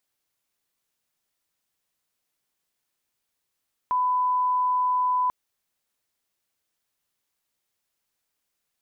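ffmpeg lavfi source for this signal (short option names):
-f lavfi -i "sine=f=1000:d=1.39:r=44100,volume=-1.94dB"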